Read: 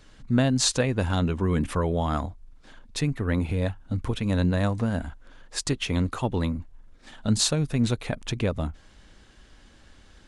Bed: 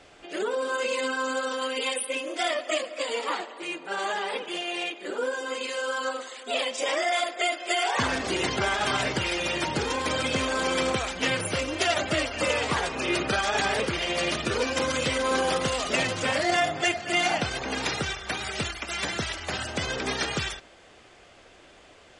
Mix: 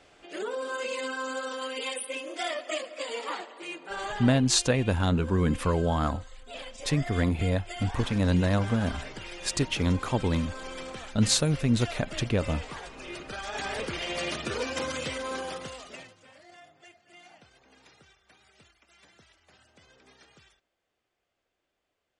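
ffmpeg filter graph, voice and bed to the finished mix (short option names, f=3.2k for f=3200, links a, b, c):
-filter_complex "[0:a]adelay=3900,volume=-0.5dB[a];[1:a]volume=4dB,afade=t=out:st=4.02:d=0.63:silence=0.354813,afade=t=in:st=13.28:d=0.71:silence=0.354813,afade=t=out:st=14.76:d=1.4:silence=0.0630957[b];[a][b]amix=inputs=2:normalize=0"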